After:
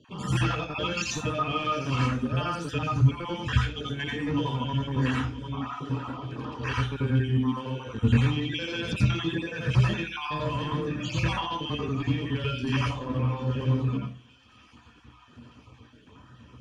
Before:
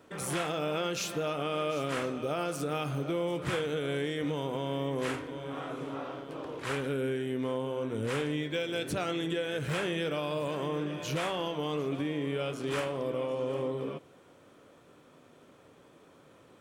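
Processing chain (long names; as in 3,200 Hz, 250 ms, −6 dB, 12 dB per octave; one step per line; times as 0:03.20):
time-frequency cells dropped at random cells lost 39%
reverb reduction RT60 1.8 s
0:03.57–0:04.05: compressor whose output falls as the input rises −40 dBFS, ratio −0.5
0:07.28–0:07.78: high-pass filter 220 Hz 12 dB per octave
gain into a clipping stage and back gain 29 dB
high-frequency loss of the air 66 metres
delay with a high-pass on its return 923 ms, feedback 60%, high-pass 2,800 Hz, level −17.5 dB
convolution reverb RT60 0.35 s, pre-delay 84 ms, DRR 0 dB
level −2.5 dB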